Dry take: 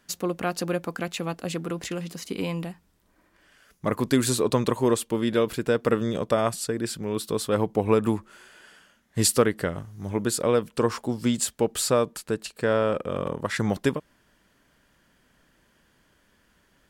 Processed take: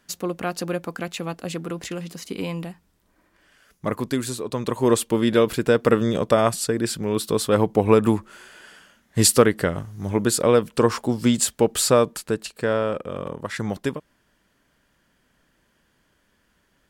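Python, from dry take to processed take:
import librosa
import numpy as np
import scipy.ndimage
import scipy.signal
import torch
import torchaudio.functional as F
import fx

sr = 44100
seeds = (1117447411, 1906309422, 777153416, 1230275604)

y = fx.gain(x, sr, db=fx.line((3.89, 0.5), (4.45, -7.0), (4.95, 5.0), (12.05, 5.0), (13.14, -2.0)))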